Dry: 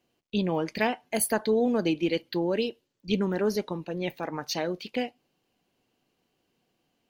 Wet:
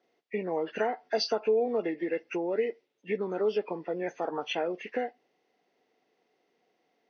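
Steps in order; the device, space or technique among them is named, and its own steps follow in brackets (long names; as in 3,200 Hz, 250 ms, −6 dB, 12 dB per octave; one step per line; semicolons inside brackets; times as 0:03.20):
hearing aid with frequency lowering (hearing-aid frequency compression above 1,000 Hz 1.5 to 1; downward compressor 4 to 1, threshold −29 dBFS, peak gain reduction 8 dB; loudspeaker in its box 280–5,700 Hz, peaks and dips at 440 Hz +8 dB, 720 Hz +6 dB, 4,500 Hz +3 dB)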